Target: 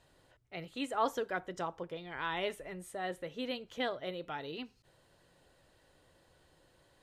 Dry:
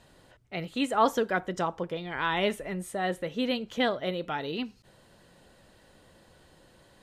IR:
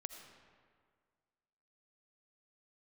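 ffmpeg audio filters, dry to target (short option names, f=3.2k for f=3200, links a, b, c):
-af "equalizer=f=210:t=o:w=0.28:g=-11.5,volume=-8dB"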